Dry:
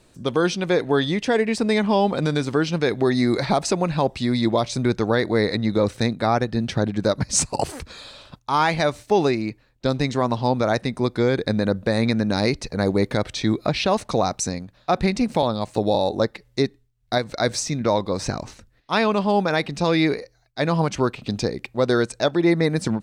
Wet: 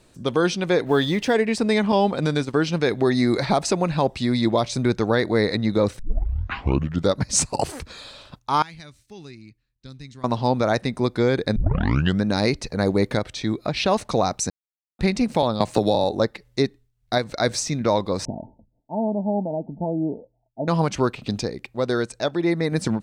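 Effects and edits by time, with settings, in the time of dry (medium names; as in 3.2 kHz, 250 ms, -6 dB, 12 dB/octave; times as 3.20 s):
0.86–1.33 s: companding laws mixed up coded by mu
1.92–2.54 s: expander -23 dBFS
5.99 s: tape start 1.17 s
8.62–10.24 s: amplifier tone stack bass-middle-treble 6-0-2
11.56 s: tape start 0.68 s
13.19–13.77 s: gain -3.5 dB
14.50–14.99 s: mute
15.60–16.04 s: three bands compressed up and down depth 100%
18.25–20.68 s: rippled Chebyshev low-pass 920 Hz, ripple 9 dB
21.41–22.72 s: gain -3.5 dB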